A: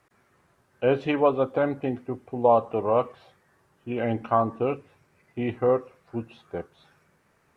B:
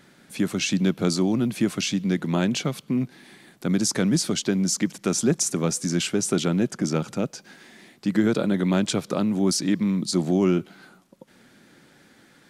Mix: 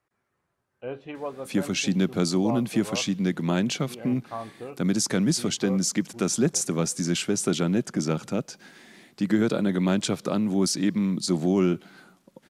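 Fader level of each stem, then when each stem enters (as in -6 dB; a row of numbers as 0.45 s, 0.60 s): -13.0 dB, -1.5 dB; 0.00 s, 1.15 s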